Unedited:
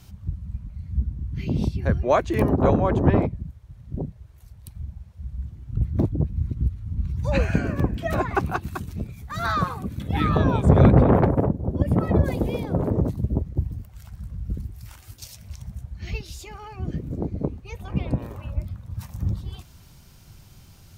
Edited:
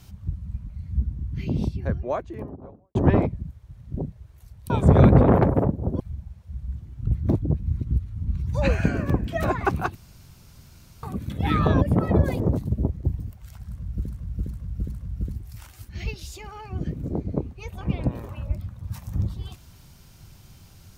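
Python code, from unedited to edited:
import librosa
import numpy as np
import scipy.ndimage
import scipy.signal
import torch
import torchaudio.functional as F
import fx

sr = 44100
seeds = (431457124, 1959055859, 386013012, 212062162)

y = fx.studio_fade_out(x, sr, start_s=1.15, length_s=1.8)
y = fx.edit(y, sr, fx.room_tone_fill(start_s=8.65, length_s=1.08),
    fx.move(start_s=10.51, length_s=1.3, to_s=4.7),
    fx.cut(start_s=12.4, length_s=0.52),
    fx.repeat(start_s=14.21, length_s=0.41, count=4),
    fx.cut(start_s=15.18, length_s=0.78), tone=tone)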